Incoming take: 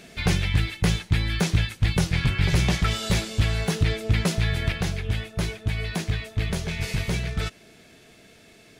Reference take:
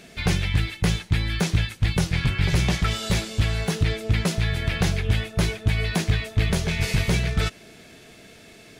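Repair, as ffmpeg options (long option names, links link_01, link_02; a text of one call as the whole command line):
ffmpeg -i in.wav -af "asetnsamples=nb_out_samples=441:pad=0,asendcmd='4.72 volume volume 4.5dB',volume=0dB" out.wav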